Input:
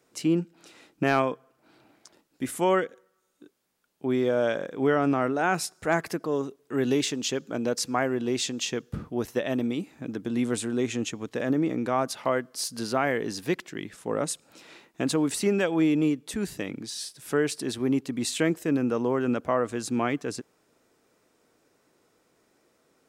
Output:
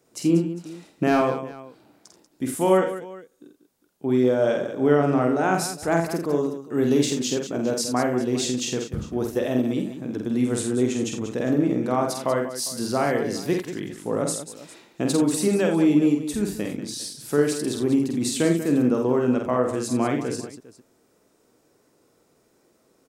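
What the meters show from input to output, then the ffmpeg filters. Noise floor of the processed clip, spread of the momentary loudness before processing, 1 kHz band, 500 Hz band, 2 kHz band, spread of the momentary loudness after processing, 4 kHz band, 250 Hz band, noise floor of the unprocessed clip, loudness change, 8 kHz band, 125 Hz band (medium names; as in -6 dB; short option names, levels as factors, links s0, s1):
-64 dBFS, 10 LU, +2.5 dB, +4.5 dB, -0.5 dB, 11 LU, +1.5 dB, +5.0 dB, -69 dBFS, +4.0 dB, +4.0 dB, +5.5 dB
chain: -af "equalizer=f=2100:t=o:w=2.4:g=-6.5,aecho=1:1:48|84|189|403:0.631|0.299|0.282|0.119,volume=1.5"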